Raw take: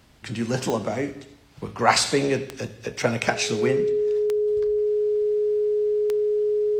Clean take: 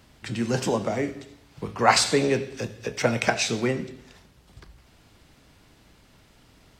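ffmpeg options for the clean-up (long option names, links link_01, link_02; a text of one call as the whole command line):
ffmpeg -i in.wav -af "adeclick=threshold=4,bandreject=frequency=420:width=30" out.wav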